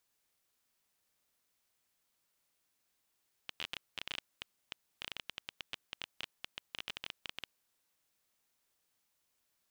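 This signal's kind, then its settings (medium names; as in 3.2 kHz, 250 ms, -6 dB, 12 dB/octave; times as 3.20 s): random clicks 14 per s -22 dBFS 3.95 s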